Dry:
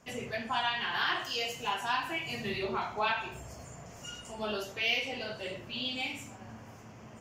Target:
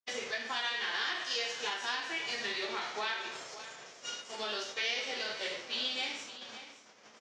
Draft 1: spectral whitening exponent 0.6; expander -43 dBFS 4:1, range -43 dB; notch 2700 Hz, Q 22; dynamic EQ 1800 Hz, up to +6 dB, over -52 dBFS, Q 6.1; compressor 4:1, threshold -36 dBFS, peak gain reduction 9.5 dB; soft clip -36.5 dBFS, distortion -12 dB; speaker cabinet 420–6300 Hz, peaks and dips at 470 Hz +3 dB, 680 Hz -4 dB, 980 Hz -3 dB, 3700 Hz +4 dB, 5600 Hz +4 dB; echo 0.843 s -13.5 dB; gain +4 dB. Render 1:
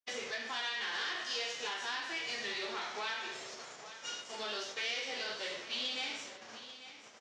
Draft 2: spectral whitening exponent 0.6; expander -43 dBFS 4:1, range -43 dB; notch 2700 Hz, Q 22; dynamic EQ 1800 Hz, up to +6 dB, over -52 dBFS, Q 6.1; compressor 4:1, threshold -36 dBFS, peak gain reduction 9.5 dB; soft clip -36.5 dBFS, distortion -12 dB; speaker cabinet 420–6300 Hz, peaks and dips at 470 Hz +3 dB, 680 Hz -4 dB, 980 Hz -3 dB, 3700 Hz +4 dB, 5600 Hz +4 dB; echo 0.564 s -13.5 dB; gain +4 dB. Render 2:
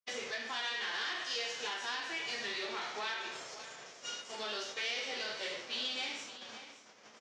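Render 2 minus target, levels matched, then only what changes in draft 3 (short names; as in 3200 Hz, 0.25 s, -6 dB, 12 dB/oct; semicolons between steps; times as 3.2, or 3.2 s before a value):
soft clip: distortion +14 dB
change: soft clip -26.5 dBFS, distortion -26 dB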